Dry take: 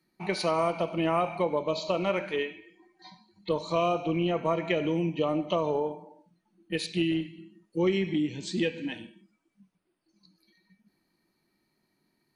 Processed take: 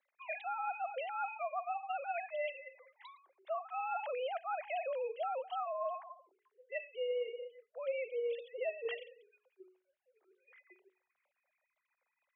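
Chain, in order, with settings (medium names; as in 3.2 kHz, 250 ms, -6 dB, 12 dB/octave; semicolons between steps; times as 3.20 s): formants replaced by sine waves; tilt shelf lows -5.5 dB, about 1.1 kHz; hum notches 50/100/150/200/250/300 Hz; reverse; compression 6:1, threshold -39 dBFS, peak gain reduction 16.5 dB; reverse; frequency shift +170 Hz; treble shelf 2.7 kHz -7.5 dB; trim +4 dB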